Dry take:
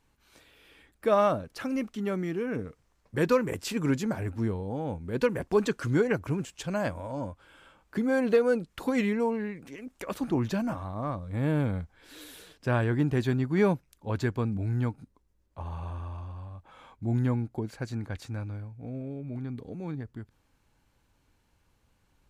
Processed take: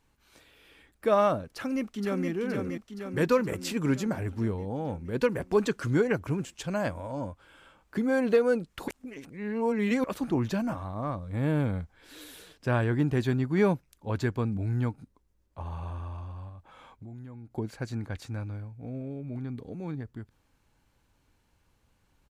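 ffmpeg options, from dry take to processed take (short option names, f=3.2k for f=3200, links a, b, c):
-filter_complex "[0:a]asplit=2[a][b];[b]afade=t=in:st=1.54:d=0.01,afade=t=out:st=2.3:d=0.01,aecho=0:1:470|940|1410|1880|2350|2820|3290|3760|4230|4700:0.595662|0.38718|0.251667|0.163584|0.106329|0.0691141|0.0449242|0.0292007|0.0189805|0.0123373[c];[a][c]amix=inputs=2:normalize=0,asettb=1/sr,asplit=3[d][e][f];[d]atrim=end=16.494[g];[e]atrim=start=16.49:end=17.55,asetpts=PTS-STARTPTS,afade=t=in:d=0.004:c=qsin,afade=t=out:st=1.056:d=0.004:c=qsin,acompressor=threshold=-42dB:ratio=6:attack=3.2:release=140:knee=1:detection=peak[h];[f]atrim=start=17.546[i];[g][h]acrossfade=d=0.004:c1=hsin:c2=qsin[j];[j][i]acrossfade=d=0.004:c1=qsin:c2=hsin,asplit=3[k][l][m];[k]atrim=end=8.882[n];[l]atrim=start=8.878:end=10.042,asetpts=PTS-STARTPTS,areverse[o];[m]atrim=start=10.038[p];[n][o]acrossfade=d=0.004:c1=hsin:c2=hsin[q];[q][p]acrossfade=d=0.004:c1=hsin:c2=hsin"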